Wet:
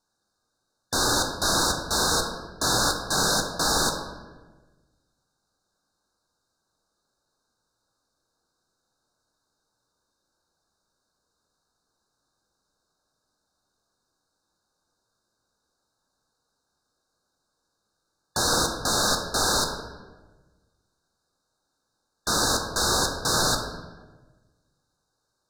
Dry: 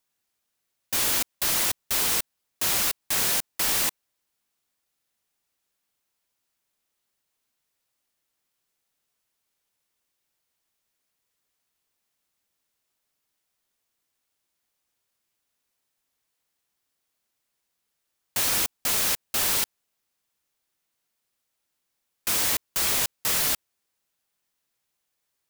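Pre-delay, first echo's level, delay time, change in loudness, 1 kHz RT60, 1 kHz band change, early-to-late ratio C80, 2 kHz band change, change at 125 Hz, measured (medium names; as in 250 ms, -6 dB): 3 ms, no echo, no echo, 0.0 dB, 1.1 s, +9.5 dB, 7.5 dB, +3.0 dB, +10.5 dB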